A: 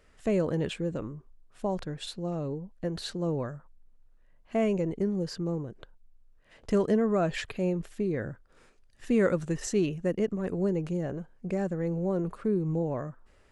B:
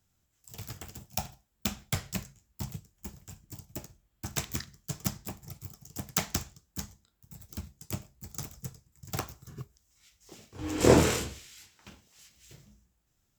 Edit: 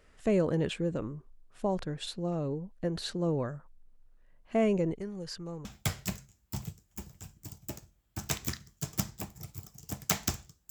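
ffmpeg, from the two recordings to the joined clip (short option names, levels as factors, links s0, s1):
-filter_complex "[0:a]asettb=1/sr,asplit=3[s0][s1][s2];[s0]atrim=end=4.954[s3];[s1]atrim=start=4.95:end=5.65,asetpts=PTS-STARTPTS,afade=t=in:d=0.004:c=qsin,afade=t=out:st=0.696:d=0.004:c=qsin,equalizer=f=270:t=o:w=2.6:g=-12[s4];[s2]atrim=start=5.646[s5];[s3][s4]acrossfade=d=0.004:c1=hsin:c2=qsin[s6];[s6][s5]acrossfade=d=0.004:c1=qsin:c2=hsin,apad=whole_dur=10.7,atrim=end=10.7,atrim=end=5.652[s7];[1:a]atrim=start=1.718:end=6.77[s8];[s7][s8]acrossfade=d=0.004:c1=hsin:c2=hsin"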